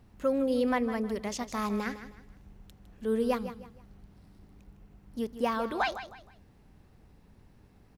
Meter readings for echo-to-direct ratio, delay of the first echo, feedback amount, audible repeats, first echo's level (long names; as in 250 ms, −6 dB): −11.5 dB, 157 ms, 32%, 3, −12.0 dB